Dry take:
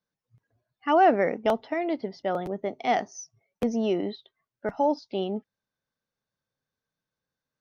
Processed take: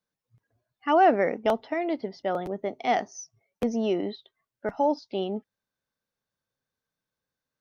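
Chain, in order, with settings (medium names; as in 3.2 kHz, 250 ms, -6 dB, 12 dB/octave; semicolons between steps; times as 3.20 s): peaking EQ 150 Hz -2.5 dB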